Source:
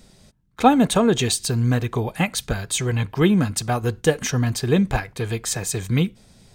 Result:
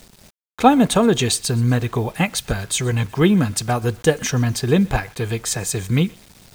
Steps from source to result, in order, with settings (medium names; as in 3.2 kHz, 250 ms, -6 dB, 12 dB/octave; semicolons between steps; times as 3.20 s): thinning echo 124 ms, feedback 49%, high-pass 740 Hz, level -22.5 dB; word length cut 8-bit, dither none; trim +2 dB